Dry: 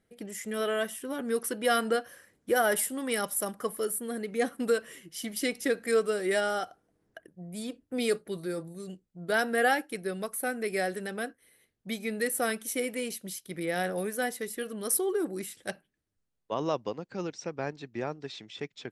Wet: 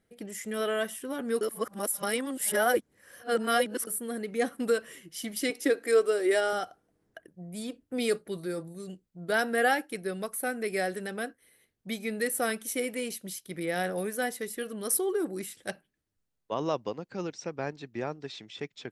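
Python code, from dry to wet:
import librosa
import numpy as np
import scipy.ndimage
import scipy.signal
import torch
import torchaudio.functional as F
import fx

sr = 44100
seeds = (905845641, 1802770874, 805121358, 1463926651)

y = fx.low_shelf_res(x, sr, hz=240.0, db=-7.5, q=3.0, at=(5.5, 6.53))
y = fx.edit(y, sr, fx.reverse_span(start_s=1.41, length_s=2.46), tone=tone)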